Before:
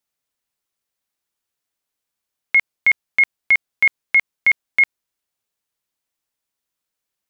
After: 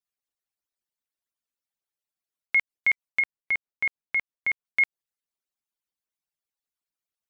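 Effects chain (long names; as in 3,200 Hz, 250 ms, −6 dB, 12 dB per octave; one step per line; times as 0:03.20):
harmonic-percussive split with one part muted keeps percussive
0:03.20–0:04.65: high-shelf EQ 2,100 Hz −8 dB
level −7 dB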